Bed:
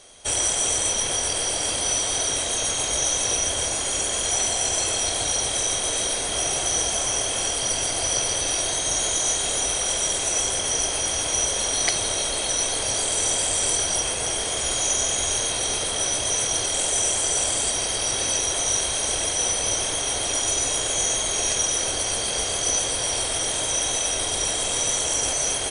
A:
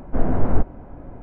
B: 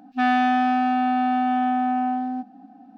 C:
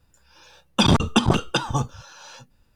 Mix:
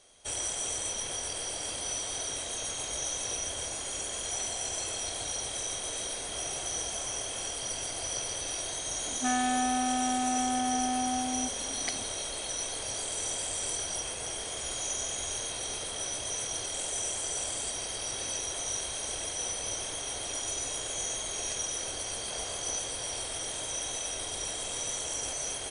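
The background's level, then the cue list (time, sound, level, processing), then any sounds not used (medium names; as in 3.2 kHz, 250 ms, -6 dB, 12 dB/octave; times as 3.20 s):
bed -11 dB
9.06 s: add B -9 dB + three bands compressed up and down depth 40%
22.14 s: add A -15 dB + high-pass 650 Hz 24 dB/octave
not used: C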